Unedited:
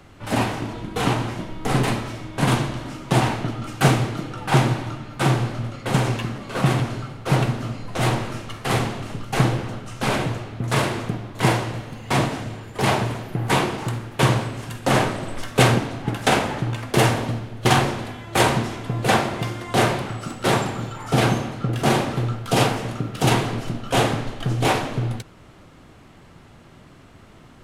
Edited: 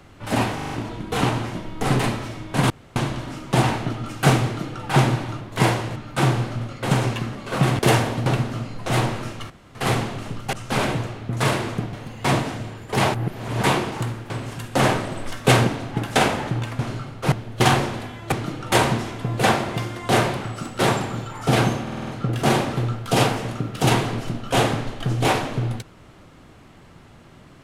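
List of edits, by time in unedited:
0.55 stutter 0.04 s, 5 plays
2.54 insert room tone 0.26 s
4.03–4.43 copy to 18.37
6.82–7.35 swap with 16.9–17.37
8.59 insert room tone 0.25 s
9.37–9.84 cut
11.24–11.79 move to 4.99
13–13.49 reverse
14.16–14.41 cut
21.47 stutter 0.05 s, 6 plays

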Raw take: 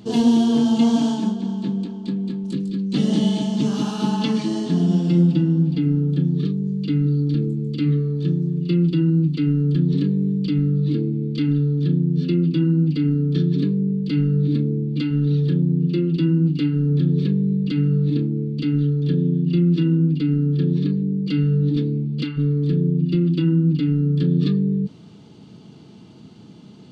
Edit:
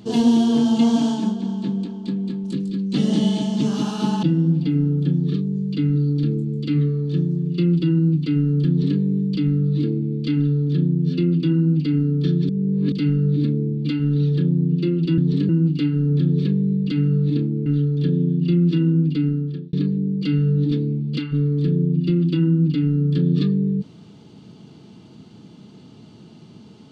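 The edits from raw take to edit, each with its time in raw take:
4.23–5.34 cut
9.79–10.1 copy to 16.29
13.6–14.03 reverse
18.46–18.71 cut
20.27–20.78 fade out linear

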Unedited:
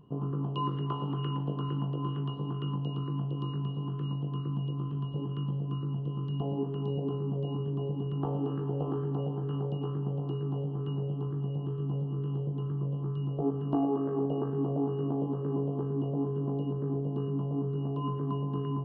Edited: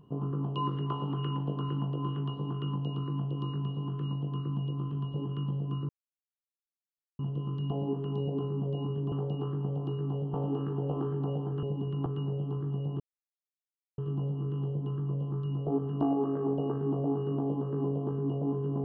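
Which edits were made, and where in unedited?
5.89 insert silence 1.30 s
7.82–8.25 swap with 9.54–10.76
11.7 insert silence 0.98 s

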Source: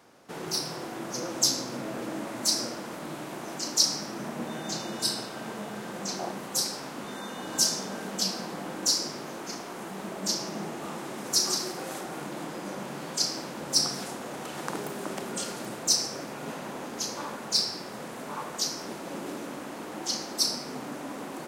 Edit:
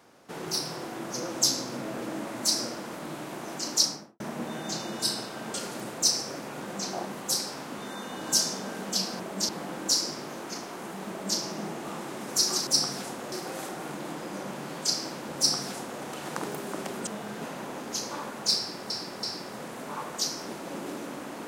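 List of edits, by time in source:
3.78–4.2 studio fade out
5.54–5.88 swap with 15.39–16.47
10.06–10.35 copy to 8.46
13.69–14.34 copy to 11.64
17.63–17.96 loop, 3 plays

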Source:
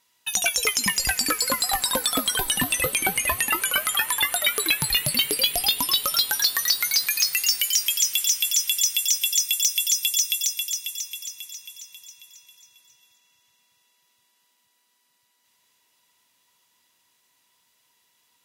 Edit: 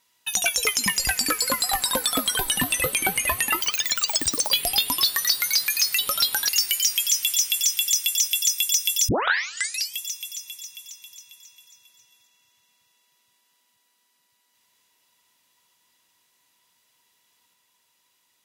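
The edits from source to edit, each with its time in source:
3.61–5.42 speed 200%
5.95–6.45 move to 7.39
9.99 tape start 0.90 s

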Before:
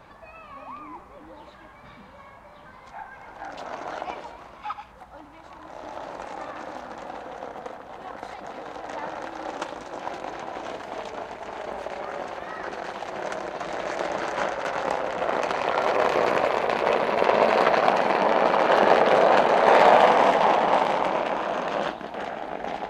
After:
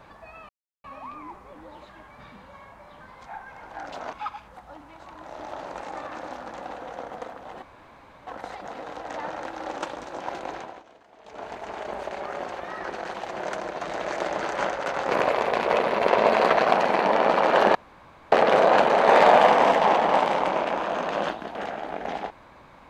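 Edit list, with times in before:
0.49 insert silence 0.35 s
3.78–4.57 cut
8.06 insert room tone 0.65 s
10.33–11.31 dip -19 dB, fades 0.30 s linear
14.9–16.27 cut
18.91 insert room tone 0.57 s

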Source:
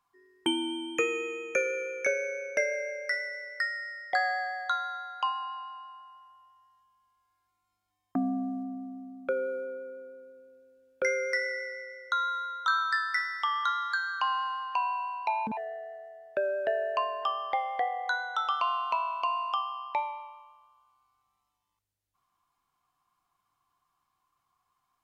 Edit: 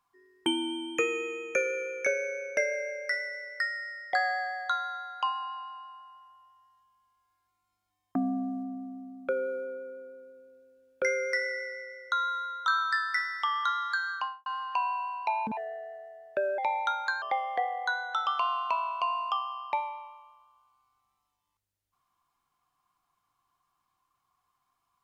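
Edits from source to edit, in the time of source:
14.11–14.46 studio fade out
16.58–17.44 speed 134%

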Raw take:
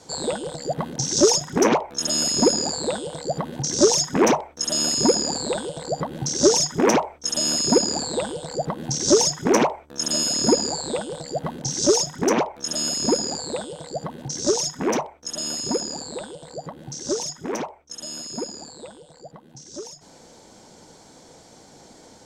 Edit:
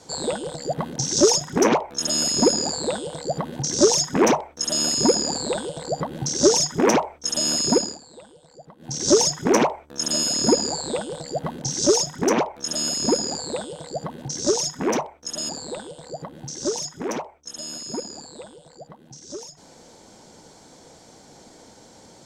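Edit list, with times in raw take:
7.61–9.16 dip -19.5 dB, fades 0.37 s equal-power
15.49–15.93 cut

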